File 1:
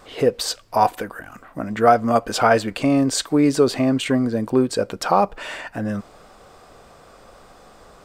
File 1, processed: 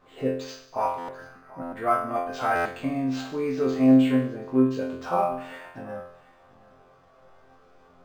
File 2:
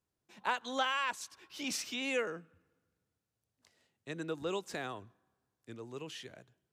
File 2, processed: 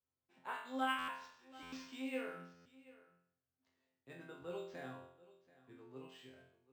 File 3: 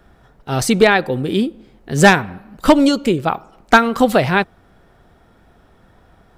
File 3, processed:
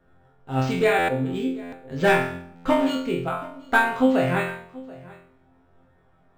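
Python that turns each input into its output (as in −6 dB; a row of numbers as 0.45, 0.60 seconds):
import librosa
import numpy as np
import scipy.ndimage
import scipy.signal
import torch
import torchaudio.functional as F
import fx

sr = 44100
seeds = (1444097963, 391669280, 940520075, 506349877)

y = fx.high_shelf(x, sr, hz=3600.0, db=-9.5)
y = fx.resonator_bank(y, sr, root=41, chord='fifth', decay_s=0.65)
y = y + 10.0 ** (-20.0 / 20.0) * np.pad(y, (int(733 * sr / 1000.0), 0))[:len(y)]
y = fx.dynamic_eq(y, sr, hz=2500.0, q=1.0, threshold_db=-48.0, ratio=4.0, max_db=5)
y = fx.buffer_glitch(y, sr, at_s=(0.98, 1.62, 2.55), block=512, repeats=8)
y = np.interp(np.arange(len(y)), np.arange(len(y))[::4], y[::4])
y = y * librosa.db_to_amplitude(7.0)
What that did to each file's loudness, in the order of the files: −5.0, −7.5, −8.0 LU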